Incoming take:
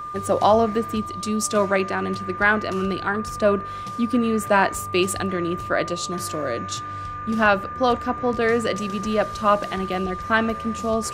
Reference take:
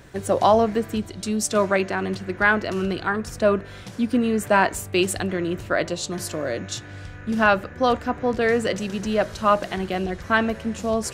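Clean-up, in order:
notch filter 1,200 Hz, Q 30

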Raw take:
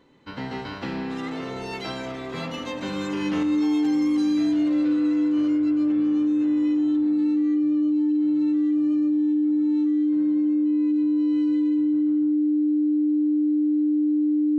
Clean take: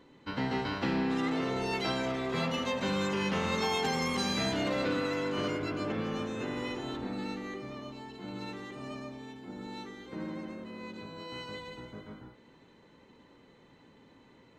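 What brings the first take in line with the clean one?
notch filter 300 Hz, Q 30
level correction +7 dB, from 0:03.43

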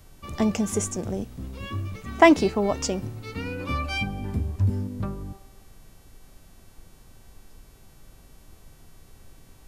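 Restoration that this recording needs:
hum removal 383.6 Hz, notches 36
noise reduction from a noise print 21 dB

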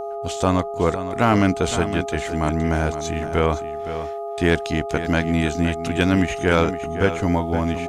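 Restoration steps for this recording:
clipped peaks rebuilt −7 dBFS
hum removal 411.6 Hz, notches 3
notch filter 680 Hz, Q 30
echo removal 515 ms −11.5 dB

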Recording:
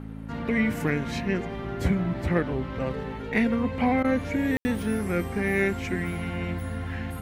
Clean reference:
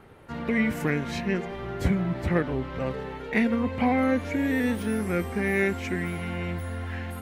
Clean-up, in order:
hum removal 53.9 Hz, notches 5
ambience match 0:04.57–0:04.65
repair the gap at 0:04.03, 12 ms

